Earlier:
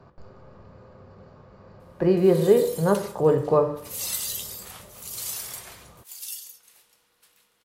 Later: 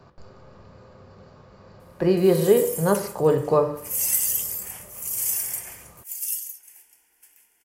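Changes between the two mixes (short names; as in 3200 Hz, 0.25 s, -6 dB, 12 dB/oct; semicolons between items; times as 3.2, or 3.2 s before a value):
background: add fixed phaser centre 800 Hz, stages 8; master: add high shelf 3100 Hz +10 dB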